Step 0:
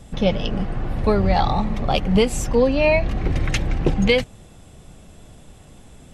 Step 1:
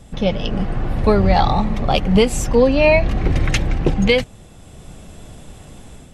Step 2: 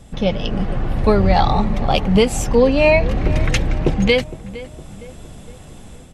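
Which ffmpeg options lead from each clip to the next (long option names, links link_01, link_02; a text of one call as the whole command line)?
ffmpeg -i in.wav -af "dynaudnorm=framelen=350:gausssize=3:maxgain=6.5dB" out.wav
ffmpeg -i in.wav -filter_complex "[0:a]asplit=2[link_01][link_02];[link_02]adelay=461,lowpass=frequency=1900:poles=1,volume=-16dB,asplit=2[link_03][link_04];[link_04]adelay=461,lowpass=frequency=1900:poles=1,volume=0.5,asplit=2[link_05][link_06];[link_06]adelay=461,lowpass=frequency=1900:poles=1,volume=0.5,asplit=2[link_07][link_08];[link_08]adelay=461,lowpass=frequency=1900:poles=1,volume=0.5[link_09];[link_01][link_03][link_05][link_07][link_09]amix=inputs=5:normalize=0" out.wav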